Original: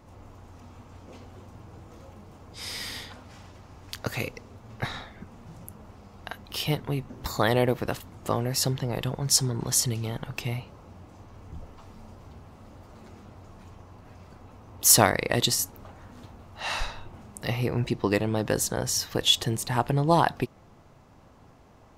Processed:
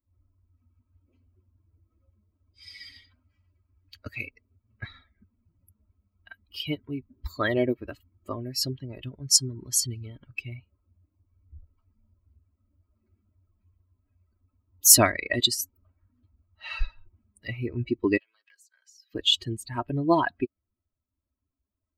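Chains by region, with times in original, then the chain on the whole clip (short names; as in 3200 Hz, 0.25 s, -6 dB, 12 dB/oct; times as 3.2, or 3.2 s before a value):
18.17–19.14 HPF 1500 Hz + compressor 4:1, threshold -39 dBFS + Doppler distortion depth 0.14 ms
whole clip: per-bin expansion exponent 2; bell 830 Hz -7 dB 0.78 oct; comb 3.1 ms, depth 67%; gain +3.5 dB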